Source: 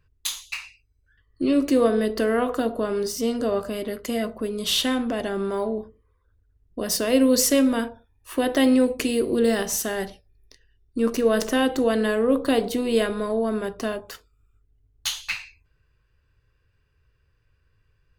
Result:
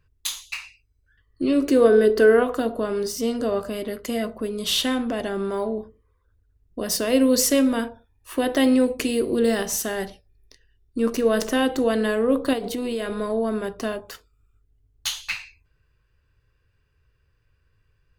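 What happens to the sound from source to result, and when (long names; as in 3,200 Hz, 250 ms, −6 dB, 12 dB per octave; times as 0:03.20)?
0:01.61–0:02.42: hollow resonant body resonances 410/1,500 Hz, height 10 dB → 13 dB
0:12.53–0:13.12: downward compressor, threshold −23 dBFS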